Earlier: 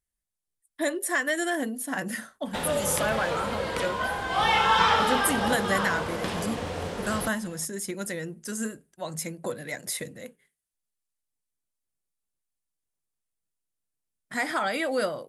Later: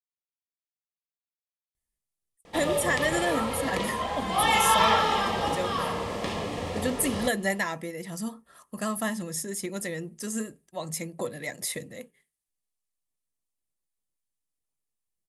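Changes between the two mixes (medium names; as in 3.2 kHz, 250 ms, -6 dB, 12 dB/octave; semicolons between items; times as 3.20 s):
speech: entry +1.75 s; master: add Butterworth band-stop 1.5 kHz, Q 6.1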